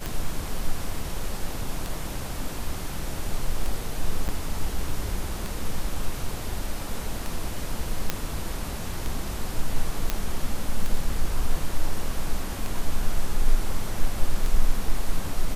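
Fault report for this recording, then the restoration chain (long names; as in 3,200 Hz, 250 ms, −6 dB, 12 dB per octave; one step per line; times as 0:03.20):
scratch tick 33 1/3 rpm
0:04.28–0:04.29: drop-out 8.4 ms
0:08.10: click −8 dBFS
0:10.10: click −8 dBFS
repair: click removal
repair the gap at 0:04.28, 8.4 ms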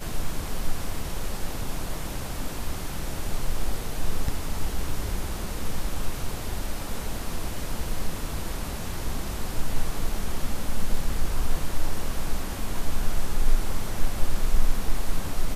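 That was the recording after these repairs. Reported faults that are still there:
none of them is left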